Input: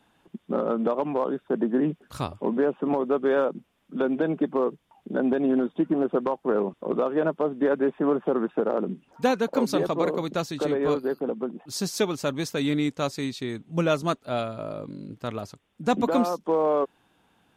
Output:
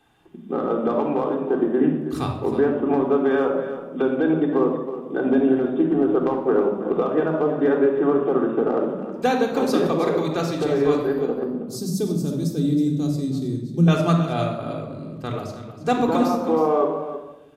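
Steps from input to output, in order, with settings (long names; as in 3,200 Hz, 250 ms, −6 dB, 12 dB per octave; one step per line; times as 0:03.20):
0:11.43–0:13.88: drawn EQ curve 110 Hz 0 dB, 180 Hz +7 dB, 960 Hz −17 dB, 2,300 Hz −23 dB, 4,100 Hz −8 dB, 12,000 Hz 0 dB
single-tap delay 319 ms −12 dB
rectangular room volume 3,600 cubic metres, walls furnished, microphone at 3.7 metres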